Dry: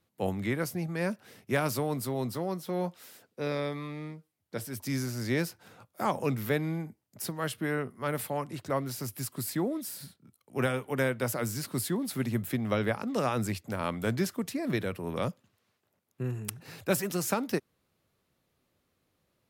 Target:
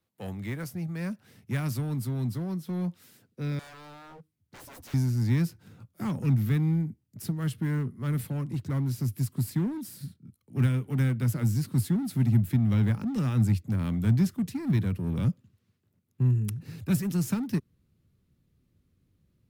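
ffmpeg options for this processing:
-filter_complex "[0:a]asubboost=boost=9.5:cutoff=220,acrossover=split=270|1100[a][b][c];[b]asoftclip=type=hard:threshold=-34.5dB[d];[c]acrusher=bits=3:mode=log:mix=0:aa=0.000001[e];[a][d][e]amix=inputs=3:normalize=0,asettb=1/sr,asplit=3[f][g][h];[f]atrim=end=3.594[i];[g]atrim=start=3.59:end=4.94,asetpts=PTS-STARTPTS,afade=t=in:d=0.004:c=qsin,afade=t=out:st=1.346:d=0.004:c=qsin,aeval=exprs='0.0133*(abs(mod(val(0)/0.0133+3,4)-2)-1)':c=same[j];[h]atrim=start=4.936[k];[i][j]acrossfade=d=0.004:c1=hsin:c2=qsin[l];[l][k]acrossfade=d=0.004:c1=qsin:c2=hsin,volume=-5.5dB"

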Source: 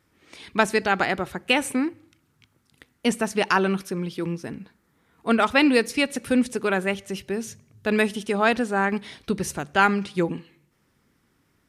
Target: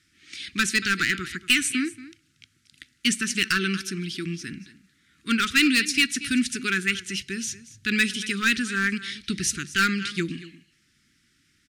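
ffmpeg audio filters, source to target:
-filter_complex "[0:a]lowpass=10k,equalizer=f=5.1k:w=0.31:g=12,asplit=2[a][b];[b]aecho=0:1:232:0.133[c];[a][c]amix=inputs=2:normalize=0,volume=10.5dB,asoftclip=hard,volume=-10.5dB,asuperstop=centerf=700:order=8:qfactor=0.66,volume=-2.5dB"

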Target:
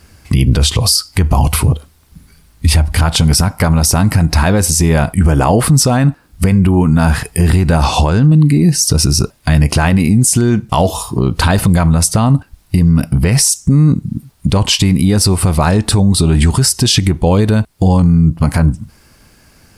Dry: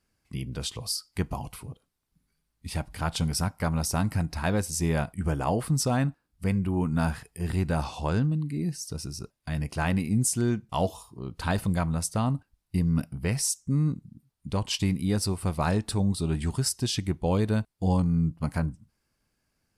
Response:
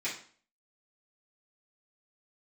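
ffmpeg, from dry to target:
-af "asetnsamples=n=441:p=0,asendcmd='3.04 equalizer g 3',equalizer=f=76:w=3:g=12.5,acompressor=threshold=-37dB:ratio=2,alimiter=level_in=30dB:limit=-1dB:release=50:level=0:latency=1,volume=-1dB"

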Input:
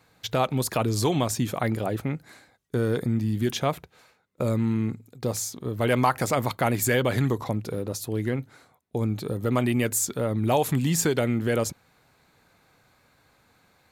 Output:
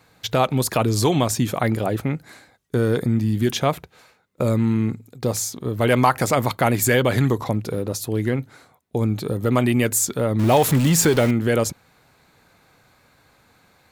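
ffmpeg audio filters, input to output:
-filter_complex "[0:a]asettb=1/sr,asplit=3[a][b][c];[a]atrim=end=10.394[d];[b]atrim=start=10.39:end=11.31,asetpts=PTS-STARTPTS,afade=t=in:d=0.004:c=qsin,afade=t=out:st=0.916:d=0.004:c=qsin,aeval=exprs='val(0)+0.5*0.0376*sgn(val(0))':c=same[e];[c]atrim=start=11.306[f];[d][e]acrossfade=d=0.004:c1=hsin:c2=qsin[g];[g][f]acrossfade=d=0.004:c1=qsin:c2=hsin,volume=5dB"

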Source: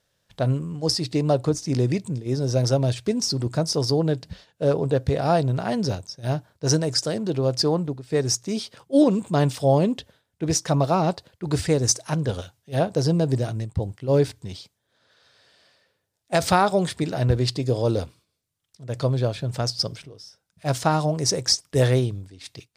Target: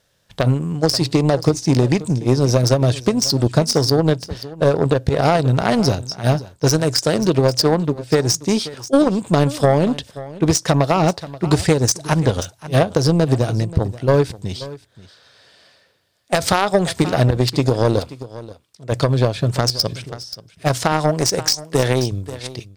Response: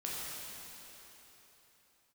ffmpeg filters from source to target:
-filter_complex "[0:a]asettb=1/sr,asplit=3[a][b][c];[a]atrim=end=18.004[d];[b]atrim=start=18:end=18.92,asetpts=PTS-STARTPTS,afade=t=in:d=0.004:c=qsin,afade=t=out:st=0.916:d=0.004:c=qsin,bass=f=250:g=-7,treble=f=4k:g=-2[e];[c]atrim=start=18.916[f];[d][e]acrossfade=d=0.004:c1=hsin:c2=qsin[g];[g][f]acrossfade=d=0.004:c1=qsin:c2=hsin,asettb=1/sr,asplit=3[h][i][j];[h]atrim=end=20.924[k];[i]atrim=start=20.92:end=22.12,asetpts=PTS-STARTPTS,afade=t=in:d=0.004:c=qsin,afade=t=out:st=1.196:d=0.004:c=qsin,highpass=f=150:p=1[l];[j]atrim=start=22.116[m];[k][l]acrossfade=d=0.004:c1=hsin:c2=qsin[n];[n][m]acrossfade=d=0.004:c1=qsin:c2=hsin,acompressor=threshold=-23dB:ratio=6,aeval=exprs='0.188*(cos(1*acos(clip(val(0)/0.188,-1,1)))-cos(1*PI/2))+0.0422*(cos(3*acos(clip(val(0)/0.188,-1,1)))-cos(3*PI/2))':c=same,aecho=1:1:531:0.126,alimiter=level_in=18.5dB:limit=-1dB:release=50:level=0:latency=1,volume=-1dB"

